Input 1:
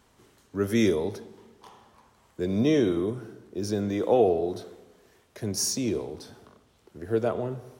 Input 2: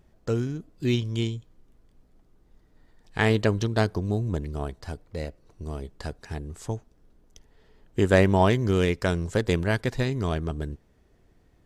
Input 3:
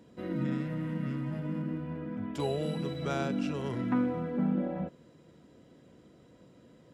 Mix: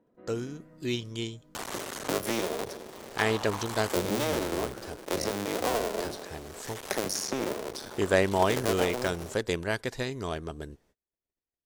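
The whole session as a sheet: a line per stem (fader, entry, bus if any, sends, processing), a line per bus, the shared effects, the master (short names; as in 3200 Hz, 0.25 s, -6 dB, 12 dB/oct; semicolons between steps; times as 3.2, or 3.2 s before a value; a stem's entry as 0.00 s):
0.0 dB, 1.55 s, no send, echo send -16 dB, cycle switcher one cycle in 2, muted; three-band squash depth 100%
-3.0 dB, 0.00 s, no send, no echo send, gate -54 dBFS, range -31 dB
-8.0 dB, 0.00 s, no send, no echo send, LPF 1400 Hz 12 dB/oct; auto duck -16 dB, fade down 1.90 s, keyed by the second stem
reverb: off
echo: echo 82 ms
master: tone controls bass -9 dB, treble +4 dB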